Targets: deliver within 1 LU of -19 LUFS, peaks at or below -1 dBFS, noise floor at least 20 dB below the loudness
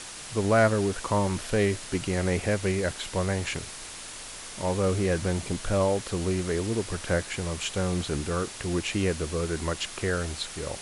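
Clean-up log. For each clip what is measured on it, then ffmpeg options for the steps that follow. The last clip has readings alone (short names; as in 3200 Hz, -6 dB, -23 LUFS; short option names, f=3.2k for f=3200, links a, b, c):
noise floor -41 dBFS; noise floor target -48 dBFS; loudness -28.0 LUFS; peak -9.5 dBFS; loudness target -19.0 LUFS
-> -af "afftdn=nr=7:nf=-41"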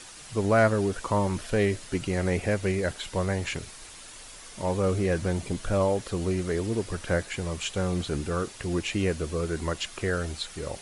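noise floor -46 dBFS; noise floor target -48 dBFS
-> -af "afftdn=nr=6:nf=-46"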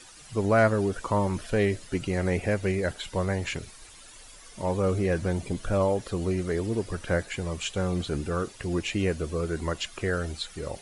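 noise floor -49 dBFS; loudness -28.5 LUFS; peak -9.5 dBFS; loudness target -19.0 LUFS
-> -af "volume=9.5dB,alimiter=limit=-1dB:level=0:latency=1"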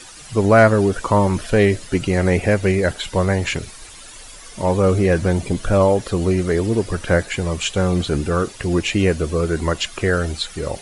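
loudness -19.0 LUFS; peak -1.0 dBFS; noise floor -40 dBFS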